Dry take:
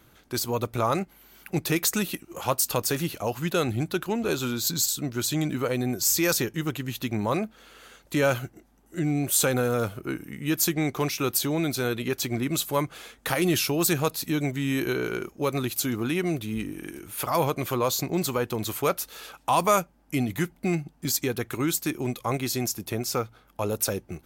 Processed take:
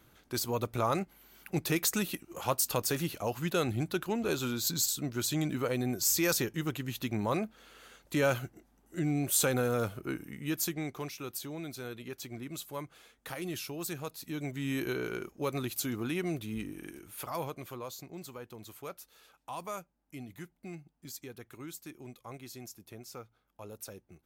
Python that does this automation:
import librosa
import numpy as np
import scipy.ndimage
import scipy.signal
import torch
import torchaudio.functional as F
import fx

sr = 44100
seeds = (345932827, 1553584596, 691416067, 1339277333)

y = fx.gain(x, sr, db=fx.line((10.23, -5.0), (11.23, -14.5), (14.13, -14.5), (14.67, -7.0), (16.84, -7.0), (18.01, -18.5)))